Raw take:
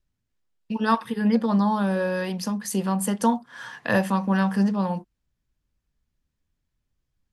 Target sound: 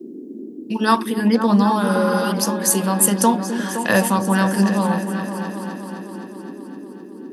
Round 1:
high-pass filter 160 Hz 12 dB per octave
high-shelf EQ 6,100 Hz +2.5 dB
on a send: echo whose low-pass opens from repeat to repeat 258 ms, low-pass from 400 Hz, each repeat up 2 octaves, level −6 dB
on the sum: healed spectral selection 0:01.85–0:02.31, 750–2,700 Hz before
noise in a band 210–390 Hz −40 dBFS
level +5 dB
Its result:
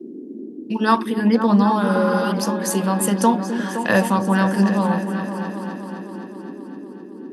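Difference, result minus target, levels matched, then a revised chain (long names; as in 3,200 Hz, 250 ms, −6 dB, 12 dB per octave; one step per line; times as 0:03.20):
8,000 Hz band −7.0 dB
high-pass filter 160 Hz 12 dB per octave
high-shelf EQ 6,100 Hz +14.5 dB
on a send: echo whose low-pass opens from repeat to repeat 258 ms, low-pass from 400 Hz, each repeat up 2 octaves, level −6 dB
on the sum: healed spectral selection 0:01.85–0:02.31, 750–2,700 Hz before
noise in a band 210–390 Hz −40 dBFS
level +5 dB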